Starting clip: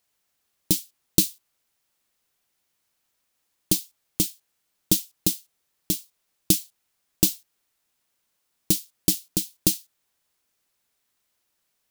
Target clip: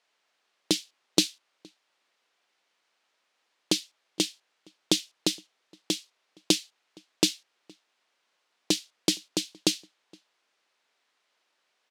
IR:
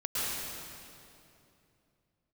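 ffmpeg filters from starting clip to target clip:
-filter_complex "[0:a]highpass=410,lowpass=4000,asplit=2[link_01][link_02];[link_02]adelay=466.5,volume=-27dB,highshelf=frequency=4000:gain=-10.5[link_03];[link_01][link_03]amix=inputs=2:normalize=0,volume=7dB"

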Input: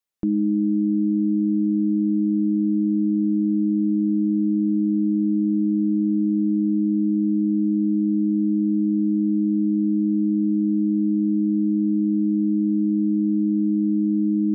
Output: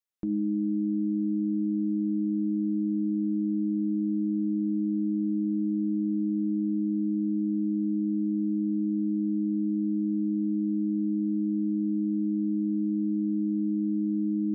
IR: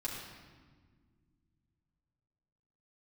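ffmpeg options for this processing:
-af "bandreject=frequency=50.42:width_type=h:width=4,bandreject=frequency=100.84:width_type=h:width=4,bandreject=frequency=151.26:width_type=h:width=4,bandreject=frequency=201.68:width_type=h:width=4,bandreject=frequency=252.1:width_type=h:width=4,bandreject=frequency=302.52:width_type=h:width=4,bandreject=frequency=352.94:width_type=h:width=4,bandreject=frequency=403.36:width_type=h:width=4,bandreject=frequency=453.78:width_type=h:width=4,bandreject=frequency=504.2:width_type=h:width=4,bandreject=frequency=554.62:width_type=h:width=4,bandreject=frequency=605.04:width_type=h:width=4,bandreject=frequency=655.46:width_type=h:width=4,bandreject=frequency=705.88:width_type=h:width=4,bandreject=frequency=756.3:width_type=h:width=4,bandreject=frequency=806.72:width_type=h:width=4,bandreject=frequency=857.14:width_type=h:width=4,bandreject=frequency=907.56:width_type=h:width=4,volume=-6.5dB"

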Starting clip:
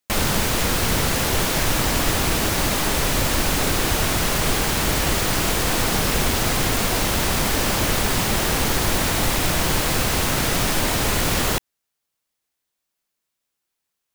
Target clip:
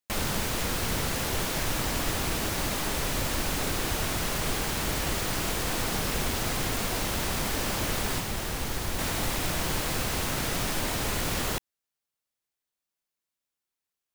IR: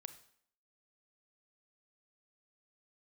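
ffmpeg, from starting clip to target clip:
-filter_complex "[0:a]asettb=1/sr,asplit=3[link_01][link_02][link_03];[link_01]atrim=end=8.184[link_04];[link_02]atrim=start=8.18:end=8.99,asetpts=PTS-STARTPTS,afade=type=in:duration=0.004:curve=qsin,afade=type=out:start_time=0.806:duration=0.004:curve=qsin,acrossover=split=120[link_05][link_06];[link_06]acompressor=threshold=-22dB:ratio=6[link_07];[link_05][link_07]amix=inputs=2:normalize=0[link_08];[link_03]atrim=start=8.986[link_09];[link_04][link_08]acrossfade=duration=0.004:curve1=hsin:curve2=qsin[link_10];[link_10][link_09]acrossfade=duration=0.004:curve1=qsin:curve2=hsin,volume=-8.5dB"

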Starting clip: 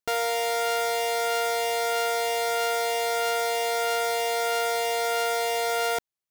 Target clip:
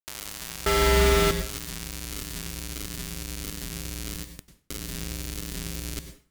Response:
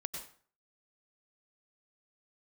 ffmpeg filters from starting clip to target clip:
-filter_complex "[0:a]equalizer=frequency=680:width_type=o:width=0.43:gain=-10.5,bandreject=frequency=50:width_type=h:width=6,bandreject=frequency=100:width_type=h:width=6,bandreject=frequency=150:width_type=h:width=6,bandreject=frequency=200:width_type=h:width=6,bandreject=frequency=250:width_type=h:width=6,bandreject=frequency=300:width_type=h:width=6,bandreject=frequency=350:width_type=h:width=6,bandreject=frequency=400:width_type=h:width=6,highpass=frequency=210:width_type=q:width=0.5412,highpass=frequency=210:width_type=q:width=1.307,lowpass=frequency=2100:width_type=q:width=0.5176,lowpass=frequency=2100:width_type=q:width=0.7071,lowpass=frequency=2100:width_type=q:width=1.932,afreqshift=-64,acrossover=split=650[link_01][link_02];[link_01]acontrast=41[link_03];[link_03][link_02]amix=inputs=2:normalize=0,alimiter=level_in=5.5dB:limit=-24dB:level=0:latency=1:release=10,volume=-5.5dB,asettb=1/sr,asplit=3[link_04][link_05][link_06];[link_04]atrim=end=0.664[link_07];[link_05]atrim=start=0.66:end=1.31,asetpts=PTS-STARTPTS,afade=type=in:duration=0.004:curve=qsin,afade=type=out:start_time=0.646:duration=0.004:curve=qsin,acontrast=24[link_08];[link_06]atrim=start=1.306[link_09];[link_07][link_08]acrossfade=duration=0.004:curve1=hsin:curve2=qsin[link_10];[link_10][link_09]acrossfade=duration=0.004:curve1=qsin:curve2=hsin,asplit=3[link_11][link_12][link_13];[link_11]afade=type=out:start_time=4.24:duration=0.02[link_14];[link_12]aeval=exprs='val(0)*sin(2*PI*30*n/s)':channel_layout=same,afade=type=in:start_time=4.24:duration=0.02,afade=type=out:start_time=4.68:duration=0.02[link_15];[link_13]afade=type=in:start_time=4.68:duration=0.02[link_16];[link_14][link_15][link_16]amix=inputs=3:normalize=0,acrusher=bits=4:mix=0:aa=0.000001,asplit=2[link_17][link_18];[1:a]atrim=start_sample=2205[link_19];[link_18][link_19]afir=irnorm=-1:irlink=0,volume=1.5dB[link_20];[link_17][link_20]amix=inputs=2:normalize=0,asubboost=boost=11:cutoff=250,volume=1.5dB"

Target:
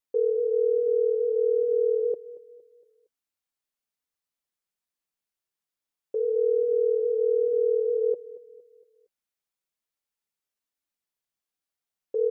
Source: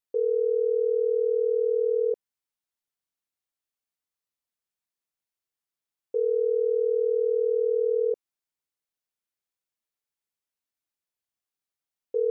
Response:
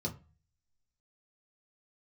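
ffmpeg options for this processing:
-af "flanger=delay=3.4:depth=2.2:regen=-53:speed=1.2:shape=triangular,aecho=1:1:231|462|693|924:0.126|0.0541|0.0233|0.01,volume=4.5dB"

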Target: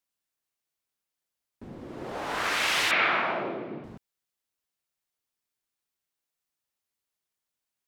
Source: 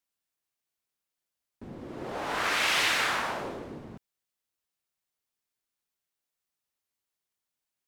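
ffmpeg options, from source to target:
ffmpeg -i in.wav -filter_complex "[0:a]asettb=1/sr,asplit=3[link_01][link_02][link_03];[link_01]atrim=end=2.914[link_04];[link_02]atrim=start=2.91:end=3.84,asetpts=PTS-STARTPTS,afade=type=in:duration=0.004:curve=qsin,afade=type=out:start_time=0.926:duration=0.004:curve=qsin,highpass=frequency=130:width=0.5412,highpass=frequency=130:width=1.3066,equalizer=frequency=130:width_type=q:width=4:gain=4,equalizer=frequency=200:width_type=q:width=4:gain=4,equalizer=frequency=350:width_type=q:width=4:gain=7,equalizer=frequency=660:width_type=q:width=4:gain=7,equalizer=frequency=1300:width_type=q:width=4:gain=5,equalizer=frequency=2300:width_type=q:width=4:gain=8,lowpass=frequency=3700:width=0.5412,lowpass=frequency=3700:width=1.3066[link_05];[link_03]atrim=start=3.836[link_06];[link_04][link_05]acrossfade=duration=0.004:curve1=hsin:curve2=qsin[link_07];[link_07][link_06]acrossfade=duration=0.004:curve1=qsin:curve2=hsin" out.wav

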